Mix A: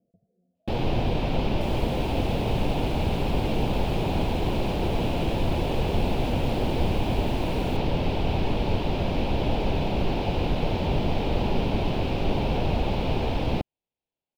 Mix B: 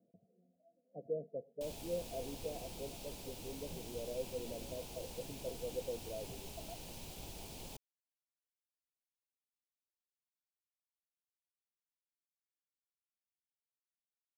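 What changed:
speech: add high-pass 160 Hz; first sound: muted

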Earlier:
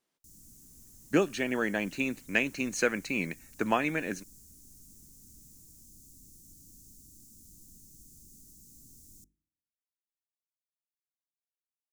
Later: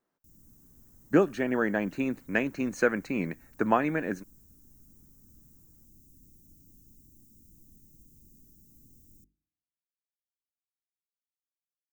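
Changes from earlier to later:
speech +3.5 dB; master: add high-order bell 5.3 kHz -12 dB 2.8 oct

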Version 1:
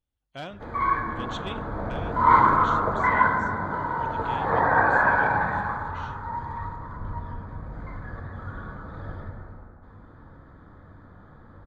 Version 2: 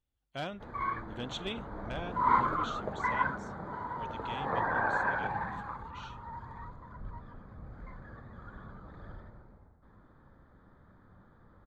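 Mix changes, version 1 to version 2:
background -5.0 dB; reverb: off

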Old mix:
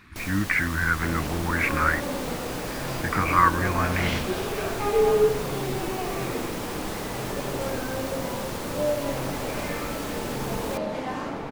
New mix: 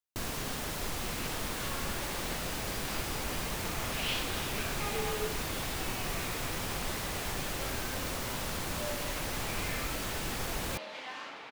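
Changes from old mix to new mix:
speech: muted; second sound: add band-pass filter 3.2 kHz, Q 1.1

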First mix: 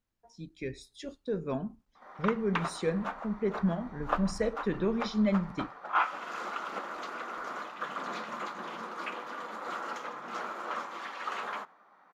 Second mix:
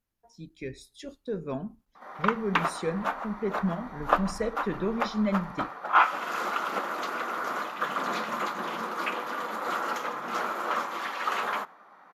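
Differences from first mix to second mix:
background +7.0 dB; master: add peaking EQ 12 kHz +13.5 dB 0.37 oct

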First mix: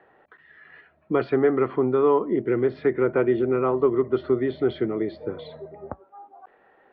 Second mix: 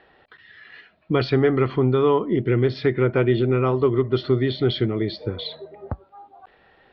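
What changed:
speech: remove three-band isolator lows -16 dB, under 220 Hz, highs -22 dB, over 2 kHz; background: add tilt EQ +2 dB/octave

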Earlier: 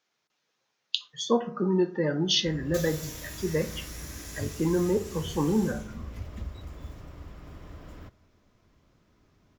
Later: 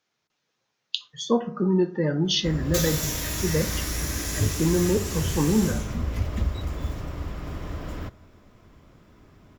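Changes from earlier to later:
speech: add bass shelf 170 Hz +10 dB; background +11.5 dB

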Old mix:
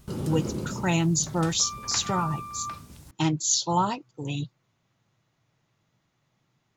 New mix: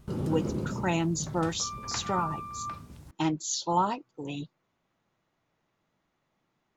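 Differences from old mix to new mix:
speech: add peaking EQ 120 Hz -14 dB 0.85 oct; master: add treble shelf 2.9 kHz -10 dB

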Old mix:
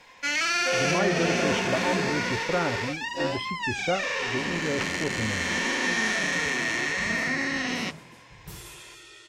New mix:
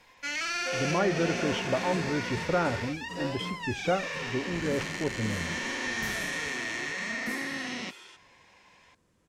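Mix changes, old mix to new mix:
first sound -6.5 dB; second sound: entry -2.45 s

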